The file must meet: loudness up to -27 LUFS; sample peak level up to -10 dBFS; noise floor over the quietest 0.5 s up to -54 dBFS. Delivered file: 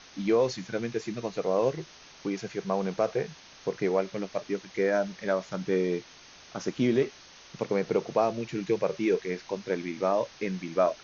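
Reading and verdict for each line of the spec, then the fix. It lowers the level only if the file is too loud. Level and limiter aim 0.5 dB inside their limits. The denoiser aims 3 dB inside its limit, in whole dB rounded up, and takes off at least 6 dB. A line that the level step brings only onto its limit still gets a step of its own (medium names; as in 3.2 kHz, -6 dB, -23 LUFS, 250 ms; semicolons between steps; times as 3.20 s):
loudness -29.5 LUFS: pass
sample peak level -12.5 dBFS: pass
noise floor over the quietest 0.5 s -52 dBFS: fail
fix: noise reduction 6 dB, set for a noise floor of -52 dBFS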